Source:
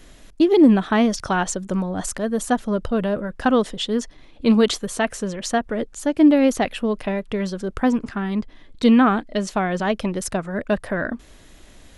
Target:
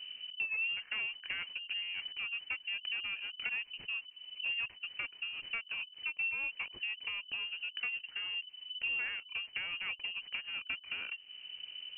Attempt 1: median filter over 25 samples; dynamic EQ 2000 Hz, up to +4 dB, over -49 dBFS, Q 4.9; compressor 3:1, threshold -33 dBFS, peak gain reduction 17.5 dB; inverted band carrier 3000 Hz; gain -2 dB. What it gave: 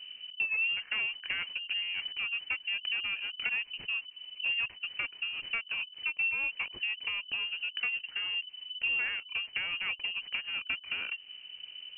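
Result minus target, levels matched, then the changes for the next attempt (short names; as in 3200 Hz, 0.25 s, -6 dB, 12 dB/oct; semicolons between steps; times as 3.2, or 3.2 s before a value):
compressor: peak gain reduction -4.5 dB
change: compressor 3:1, threshold -40 dBFS, peak gain reduction 22 dB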